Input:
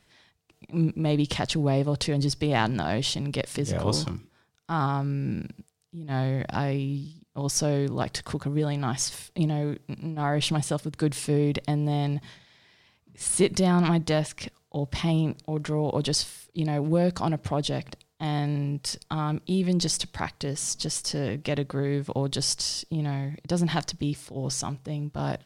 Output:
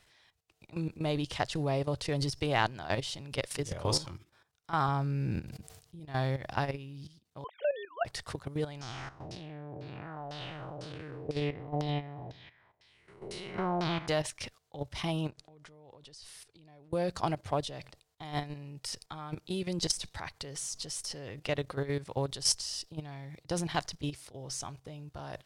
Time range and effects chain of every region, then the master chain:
4.88–6.00 s: bass shelf 340 Hz +6.5 dB + decay stretcher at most 76 dB/s
7.44–8.05 s: formants replaced by sine waves + steep high-pass 550 Hz + distance through air 94 m
8.81–14.08 s: spectral blur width 360 ms + LFO low-pass saw down 2 Hz 600–5500 Hz + delay 82 ms -21.5 dB
15.30–16.93 s: low-pass 9 kHz + compression, threshold -41 dBFS
whole clip: level held to a coarse grid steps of 13 dB; peaking EQ 210 Hz -10.5 dB 1.4 oct; trim +1 dB

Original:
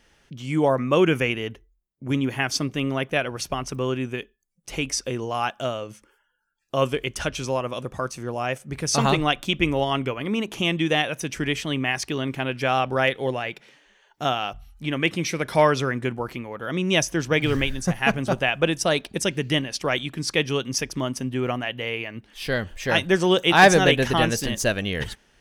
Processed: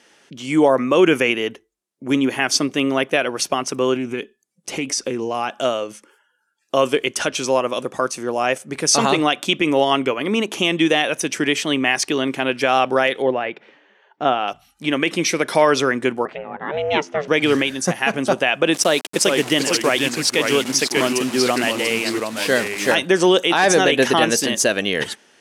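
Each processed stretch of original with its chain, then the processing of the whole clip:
3.96–5.60 s: bass shelf 350 Hz +8 dB + compression 3:1, threshold -27 dBFS + loudspeaker Doppler distortion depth 0.11 ms
13.22–14.48 s: low-pass 3.1 kHz + treble shelf 2.3 kHz -8 dB
16.25–17.28 s: low-pass 2.2 kHz + ring modulator 300 Hz
18.74–22.95 s: word length cut 6-bit, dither none + ever faster or slower copies 392 ms, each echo -2 st, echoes 2, each echo -6 dB
whole clip: Chebyshev band-pass 290–9700 Hz, order 2; treble shelf 8.4 kHz +4.5 dB; peak limiter -12.5 dBFS; trim +8 dB

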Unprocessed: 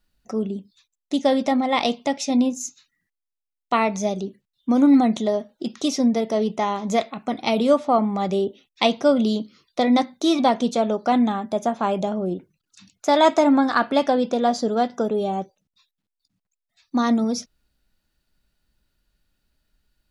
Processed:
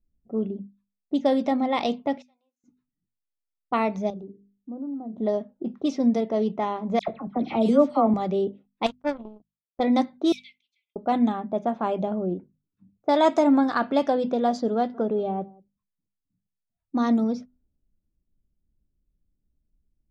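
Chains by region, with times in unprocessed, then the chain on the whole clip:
2.22–2.64 s: high-pass 1.4 kHz + compression 3:1, threshold -34 dBFS + differentiator
4.10–5.18 s: peaking EQ 2.2 kHz -11.5 dB 0.49 oct + hum notches 50/100/150/200/250/300/350/400/450 Hz + compression 2.5:1, threshold -37 dBFS
6.99–8.14 s: bass shelf 230 Hz +7 dB + phase dispersion lows, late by 89 ms, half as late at 1.8 kHz
8.86–9.80 s: power-law waveshaper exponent 3 + tape noise reduction on one side only encoder only
10.32–10.96 s: block-companded coder 7-bit + brick-wall FIR high-pass 2 kHz
14.76–17.02 s: distance through air 58 m + delay 180 ms -22.5 dB
whole clip: level-controlled noise filter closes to 320 Hz, open at -15 dBFS; tilt shelf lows +3.5 dB; hum notches 50/100/150/200/250 Hz; trim -4.5 dB

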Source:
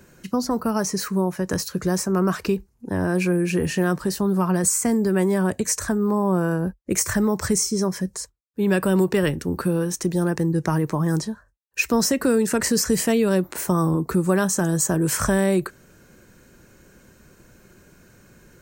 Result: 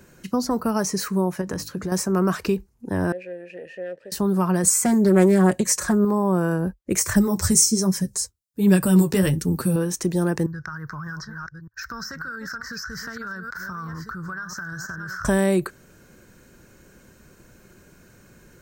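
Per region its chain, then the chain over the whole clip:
1.41–1.92 s: peaking EQ 11 kHz -6 dB 2.8 oct + hum notches 50/100/150/200/250/300 Hz + compression, threshold -23 dBFS
3.12–4.12 s: partial rectifier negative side -12 dB + vowel filter e
4.66–6.05 s: high-pass 51 Hz + comb 5.5 ms, depth 82% + loudspeaker Doppler distortion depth 0.15 ms
7.16–9.76 s: flange 1.3 Hz, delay 4.5 ms, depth 8.8 ms, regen +18% + tone controls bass +9 dB, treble +11 dB
10.46–15.25 s: chunks repeated in reverse 609 ms, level -10 dB + FFT filter 110 Hz 0 dB, 290 Hz -19 dB, 650 Hz -17 dB, 910 Hz -10 dB, 1.5 kHz +14 dB, 2.6 kHz -25 dB, 5.3 kHz -1 dB, 8.9 kHz -28 dB, 15 kHz -11 dB + compression 12:1, threshold -29 dBFS
whole clip: none

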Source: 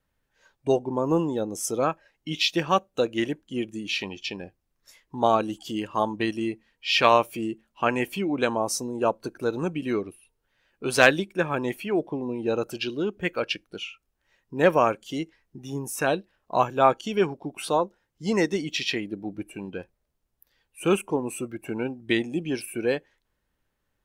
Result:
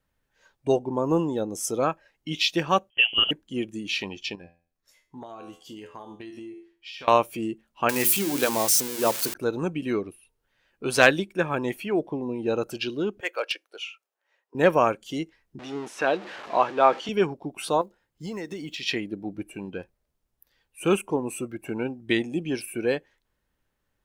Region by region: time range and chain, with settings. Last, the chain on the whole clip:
2.90–3.31 s: bass shelf 340 Hz +8 dB + de-hum 107.1 Hz, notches 11 + frequency inversion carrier 3.2 kHz
4.35–7.08 s: feedback comb 85 Hz, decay 0.38 s, mix 80% + compression 16:1, threshold -36 dBFS
7.89–9.34 s: zero-crossing glitches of -16 dBFS + high-pass 60 Hz + hum notches 60/120/180/240/300/360/420 Hz
13.20–14.55 s: high-pass 470 Hz 24 dB/octave + overload inside the chain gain 19 dB + tape noise reduction on one side only decoder only
15.59–17.09 s: jump at every zero crossing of -32 dBFS + band-pass 310–3700 Hz
17.81–18.83 s: block-companded coder 7-bit + compression, threshold -31 dBFS + band-stop 5.8 kHz, Q 11
whole clip: none

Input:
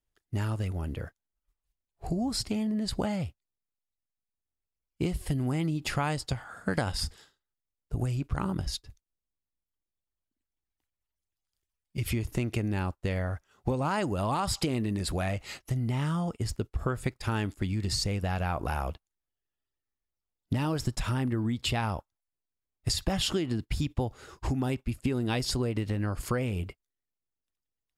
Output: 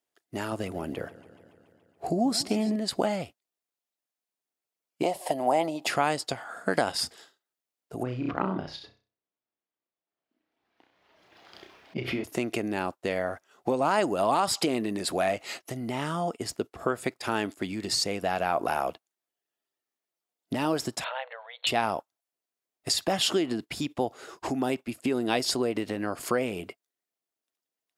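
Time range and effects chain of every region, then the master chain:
0.52–2.76 s: bass shelf 380 Hz +4.5 dB + modulated delay 142 ms, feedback 71%, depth 103 cents, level -18 dB
5.03–5.86 s: high-pass 380 Hz 6 dB/octave + high-order bell 720 Hz +14.5 dB 1.1 oct + band-stop 1.5 kHz, Q 19
8.03–12.24 s: distance through air 290 m + flutter echo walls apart 5.5 m, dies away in 0.34 s + swell ahead of each attack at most 29 dB/s
21.04–21.67 s: brick-wall FIR band-pass 470–4400 Hz + peaking EQ 1.2 kHz -6 dB 0.35 oct
whole clip: Chebyshev high-pass 320 Hz, order 2; peaking EQ 680 Hz +6.5 dB 0.21 oct; trim +5 dB

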